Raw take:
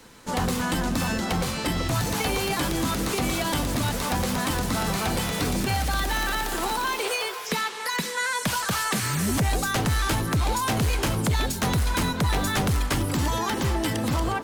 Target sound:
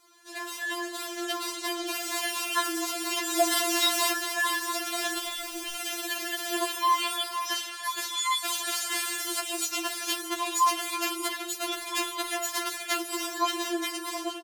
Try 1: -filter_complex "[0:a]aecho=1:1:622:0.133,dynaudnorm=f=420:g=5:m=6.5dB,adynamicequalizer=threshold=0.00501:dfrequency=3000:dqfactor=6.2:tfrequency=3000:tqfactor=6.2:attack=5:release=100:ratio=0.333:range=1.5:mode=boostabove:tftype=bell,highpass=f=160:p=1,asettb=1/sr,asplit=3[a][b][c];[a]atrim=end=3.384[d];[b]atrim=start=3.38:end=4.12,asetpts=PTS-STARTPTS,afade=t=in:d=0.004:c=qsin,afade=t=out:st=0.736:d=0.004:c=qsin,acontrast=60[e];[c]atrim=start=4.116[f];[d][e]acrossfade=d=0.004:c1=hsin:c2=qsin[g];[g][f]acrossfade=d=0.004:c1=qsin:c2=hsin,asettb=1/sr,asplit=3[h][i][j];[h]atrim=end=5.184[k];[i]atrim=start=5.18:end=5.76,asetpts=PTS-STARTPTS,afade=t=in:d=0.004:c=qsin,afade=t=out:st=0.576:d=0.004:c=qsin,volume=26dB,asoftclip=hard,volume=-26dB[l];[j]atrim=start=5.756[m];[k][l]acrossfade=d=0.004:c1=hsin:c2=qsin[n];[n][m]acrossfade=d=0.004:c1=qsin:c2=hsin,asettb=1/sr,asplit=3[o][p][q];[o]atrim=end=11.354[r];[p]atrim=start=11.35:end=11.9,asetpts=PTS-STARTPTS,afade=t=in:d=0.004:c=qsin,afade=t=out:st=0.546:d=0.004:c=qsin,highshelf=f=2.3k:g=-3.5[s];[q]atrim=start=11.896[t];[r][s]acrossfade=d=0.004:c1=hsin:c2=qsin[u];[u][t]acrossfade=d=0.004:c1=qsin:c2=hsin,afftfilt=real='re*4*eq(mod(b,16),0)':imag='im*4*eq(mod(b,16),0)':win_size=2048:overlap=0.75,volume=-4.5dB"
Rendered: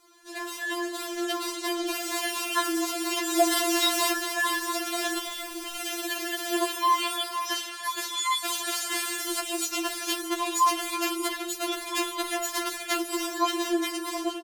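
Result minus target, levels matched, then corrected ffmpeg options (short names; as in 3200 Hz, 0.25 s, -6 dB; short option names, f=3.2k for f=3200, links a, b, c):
125 Hz band +4.0 dB
-filter_complex "[0:a]aecho=1:1:622:0.133,dynaudnorm=f=420:g=5:m=6.5dB,adynamicequalizer=threshold=0.00501:dfrequency=3000:dqfactor=6.2:tfrequency=3000:tqfactor=6.2:attack=5:release=100:ratio=0.333:range=1.5:mode=boostabove:tftype=bell,highpass=f=580:p=1,asettb=1/sr,asplit=3[a][b][c];[a]atrim=end=3.384[d];[b]atrim=start=3.38:end=4.12,asetpts=PTS-STARTPTS,afade=t=in:d=0.004:c=qsin,afade=t=out:st=0.736:d=0.004:c=qsin,acontrast=60[e];[c]atrim=start=4.116[f];[d][e]acrossfade=d=0.004:c1=hsin:c2=qsin[g];[g][f]acrossfade=d=0.004:c1=qsin:c2=hsin,asettb=1/sr,asplit=3[h][i][j];[h]atrim=end=5.184[k];[i]atrim=start=5.18:end=5.76,asetpts=PTS-STARTPTS,afade=t=in:d=0.004:c=qsin,afade=t=out:st=0.576:d=0.004:c=qsin,volume=26dB,asoftclip=hard,volume=-26dB[l];[j]atrim=start=5.756[m];[k][l]acrossfade=d=0.004:c1=hsin:c2=qsin[n];[n][m]acrossfade=d=0.004:c1=qsin:c2=hsin,asettb=1/sr,asplit=3[o][p][q];[o]atrim=end=11.354[r];[p]atrim=start=11.35:end=11.9,asetpts=PTS-STARTPTS,afade=t=in:d=0.004:c=qsin,afade=t=out:st=0.546:d=0.004:c=qsin,highshelf=f=2.3k:g=-3.5[s];[q]atrim=start=11.896[t];[r][s]acrossfade=d=0.004:c1=hsin:c2=qsin[u];[u][t]acrossfade=d=0.004:c1=qsin:c2=hsin,afftfilt=real='re*4*eq(mod(b,16),0)':imag='im*4*eq(mod(b,16),0)':win_size=2048:overlap=0.75,volume=-4.5dB"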